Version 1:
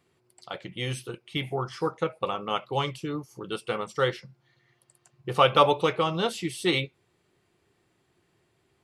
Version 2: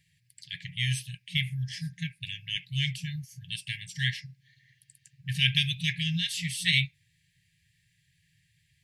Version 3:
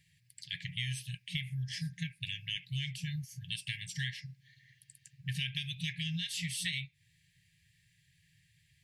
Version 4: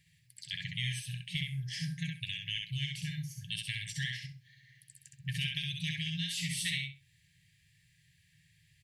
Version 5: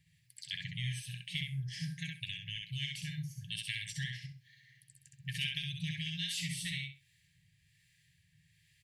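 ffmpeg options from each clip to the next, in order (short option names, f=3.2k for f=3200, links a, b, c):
-af "afftfilt=real='re*(1-between(b*sr/4096,180,1600))':imag='im*(1-between(b*sr/4096,180,1600))':win_size=4096:overlap=0.75,volume=4dB"
-af "acompressor=threshold=-33dB:ratio=10"
-af "aecho=1:1:65|130|195:0.668|0.127|0.0241"
-filter_complex "[0:a]acrossover=split=920[a][b];[a]aeval=exprs='val(0)*(1-0.5/2+0.5/2*cos(2*PI*1.2*n/s))':c=same[c];[b]aeval=exprs='val(0)*(1-0.5/2-0.5/2*cos(2*PI*1.2*n/s))':c=same[d];[c][d]amix=inputs=2:normalize=0"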